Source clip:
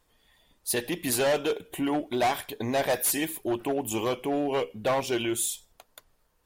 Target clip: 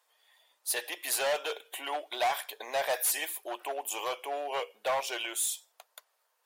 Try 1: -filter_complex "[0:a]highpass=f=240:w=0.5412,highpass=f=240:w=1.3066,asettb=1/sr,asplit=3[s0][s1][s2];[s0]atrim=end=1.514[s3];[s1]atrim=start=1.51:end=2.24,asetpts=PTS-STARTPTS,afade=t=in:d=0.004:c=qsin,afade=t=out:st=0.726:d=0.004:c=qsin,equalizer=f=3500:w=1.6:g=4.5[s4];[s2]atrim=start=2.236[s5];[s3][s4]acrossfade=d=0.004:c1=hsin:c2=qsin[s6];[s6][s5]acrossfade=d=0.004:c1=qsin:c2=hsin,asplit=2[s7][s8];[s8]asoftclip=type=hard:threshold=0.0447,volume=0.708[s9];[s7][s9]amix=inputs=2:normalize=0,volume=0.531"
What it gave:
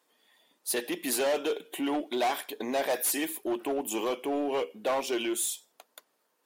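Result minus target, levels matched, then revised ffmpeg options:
250 Hz band +17.5 dB
-filter_complex "[0:a]highpass=f=580:w=0.5412,highpass=f=580:w=1.3066,asettb=1/sr,asplit=3[s0][s1][s2];[s0]atrim=end=1.514[s3];[s1]atrim=start=1.51:end=2.24,asetpts=PTS-STARTPTS,afade=t=in:d=0.004:c=qsin,afade=t=out:st=0.726:d=0.004:c=qsin,equalizer=f=3500:w=1.6:g=4.5[s4];[s2]atrim=start=2.236[s5];[s3][s4]acrossfade=d=0.004:c1=hsin:c2=qsin[s6];[s6][s5]acrossfade=d=0.004:c1=qsin:c2=hsin,asplit=2[s7][s8];[s8]asoftclip=type=hard:threshold=0.0447,volume=0.708[s9];[s7][s9]amix=inputs=2:normalize=0,volume=0.531"

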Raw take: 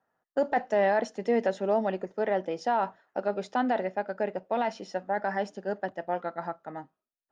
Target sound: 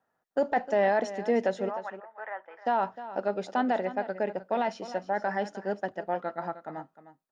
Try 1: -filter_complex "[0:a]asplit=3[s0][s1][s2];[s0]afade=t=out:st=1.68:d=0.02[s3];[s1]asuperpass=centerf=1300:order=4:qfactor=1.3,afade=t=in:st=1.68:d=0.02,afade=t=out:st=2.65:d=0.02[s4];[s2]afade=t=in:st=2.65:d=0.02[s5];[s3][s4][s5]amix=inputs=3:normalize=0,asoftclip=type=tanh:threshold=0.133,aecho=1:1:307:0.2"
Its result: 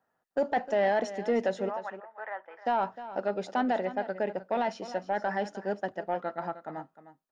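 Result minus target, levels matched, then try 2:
saturation: distortion +21 dB
-filter_complex "[0:a]asplit=3[s0][s1][s2];[s0]afade=t=out:st=1.68:d=0.02[s3];[s1]asuperpass=centerf=1300:order=4:qfactor=1.3,afade=t=in:st=1.68:d=0.02,afade=t=out:st=2.65:d=0.02[s4];[s2]afade=t=in:st=2.65:d=0.02[s5];[s3][s4][s5]amix=inputs=3:normalize=0,asoftclip=type=tanh:threshold=0.501,aecho=1:1:307:0.2"

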